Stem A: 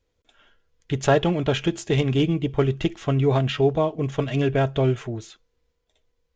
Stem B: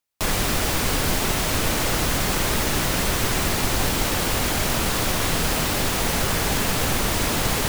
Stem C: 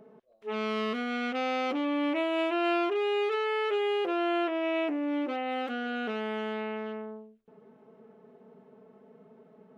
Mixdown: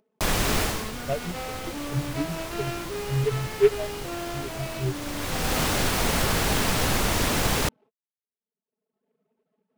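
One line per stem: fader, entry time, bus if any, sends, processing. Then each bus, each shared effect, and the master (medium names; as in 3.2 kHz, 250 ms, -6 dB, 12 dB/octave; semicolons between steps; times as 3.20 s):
-3.0 dB, 0.00 s, no send, spectral contrast expander 4:1
-1.0 dB, 0.00 s, no send, auto duck -13 dB, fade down 0.30 s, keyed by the first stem
-3.5 dB, 0.00 s, no send, reverb removal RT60 1.5 s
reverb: none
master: gate -47 dBFS, range -59 dB; upward compressor, threshold -40 dBFS; delay time shaken by noise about 1.7 kHz, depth 0.038 ms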